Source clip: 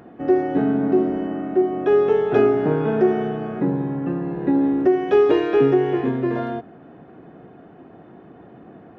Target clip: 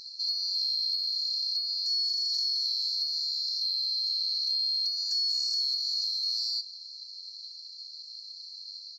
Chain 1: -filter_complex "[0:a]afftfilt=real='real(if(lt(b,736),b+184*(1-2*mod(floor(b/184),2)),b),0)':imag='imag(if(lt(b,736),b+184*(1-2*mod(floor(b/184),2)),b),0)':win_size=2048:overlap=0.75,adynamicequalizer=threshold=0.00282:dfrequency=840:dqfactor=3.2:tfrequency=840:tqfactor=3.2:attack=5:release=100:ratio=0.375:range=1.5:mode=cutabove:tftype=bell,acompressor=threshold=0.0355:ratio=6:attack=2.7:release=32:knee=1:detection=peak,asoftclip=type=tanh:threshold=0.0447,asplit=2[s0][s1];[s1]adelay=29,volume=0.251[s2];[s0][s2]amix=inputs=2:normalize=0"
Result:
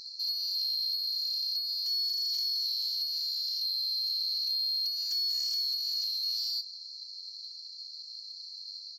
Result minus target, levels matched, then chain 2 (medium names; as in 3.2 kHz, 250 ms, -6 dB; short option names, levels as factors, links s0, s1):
saturation: distortion +19 dB
-filter_complex "[0:a]afftfilt=real='real(if(lt(b,736),b+184*(1-2*mod(floor(b/184),2)),b),0)':imag='imag(if(lt(b,736),b+184*(1-2*mod(floor(b/184),2)),b),0)':win_size=2048:overlap=0.75,adynamicequalizer=threshold=0.00282:dfrequency=840:dqfactor=3.2:tfrequency=840:tqfactor=3.2:attack=5:release=100:ratio=0.375:range=1.5:mode=cutabove:tftype=bell,acompressor=threshold=0.0355:ratio=6:attack=2.7:release=32:knee=1:detection=peak,asoftclip=type=tanh:threshold=0.158,asplit=2[s0][s1];[s1]adelay=29,volume=0.251[s2];[s0][s2]amix=inputs=2:normalize=0"